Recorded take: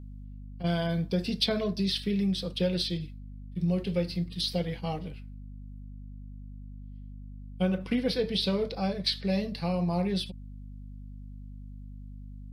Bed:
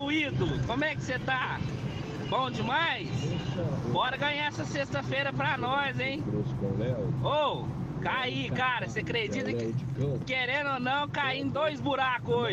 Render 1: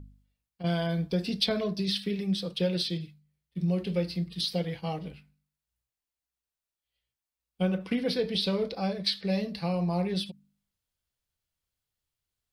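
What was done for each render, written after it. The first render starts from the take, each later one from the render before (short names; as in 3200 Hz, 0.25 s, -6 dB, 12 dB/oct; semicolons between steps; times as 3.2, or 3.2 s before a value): de-hum 50 Hz, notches 5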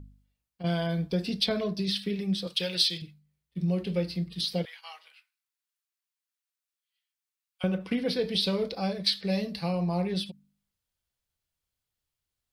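2.47–3.02 tilt shelf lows -9 dB, about 1100 Hz; 4.65–7.64 HPF 1100 Hz 24 dB/oct; 8.21–9.71 high shelf 4700 Hz +5.5 dB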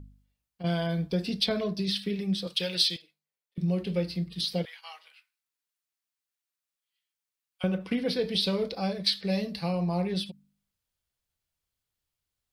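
2.96–3.58 ladder high-pass 380 Hz, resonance 25%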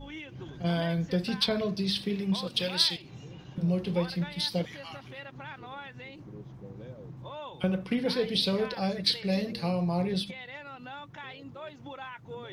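add bed -14 dB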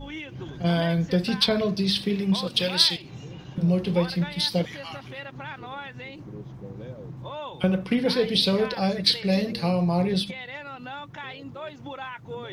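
gain +5.5 dB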